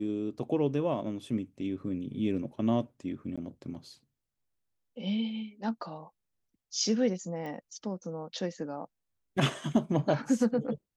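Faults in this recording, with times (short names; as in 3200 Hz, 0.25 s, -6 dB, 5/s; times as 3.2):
3.36–3.38 gap 16 ms
7.46 pop -29 dBFS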